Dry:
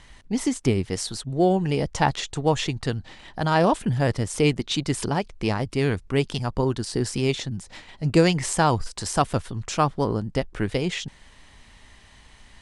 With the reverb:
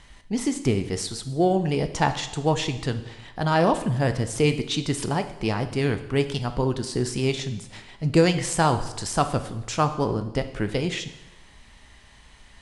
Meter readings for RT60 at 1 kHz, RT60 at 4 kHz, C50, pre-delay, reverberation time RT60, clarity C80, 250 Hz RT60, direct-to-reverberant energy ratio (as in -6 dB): 0.95 s, 0.85 s, 11.5 dB, 5 ms, 0.95 s, 14.0 dB, 0.95 s, 8.5 dB